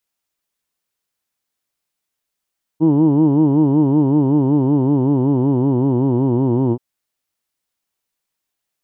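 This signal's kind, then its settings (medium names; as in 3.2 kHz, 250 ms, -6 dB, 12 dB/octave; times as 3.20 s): formant vowel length 3.98 s, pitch 152 Hz, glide -3.5 st, vibrato depth 1.3 st, F1 320 Hz, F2 930 Hz, F3 3 kHz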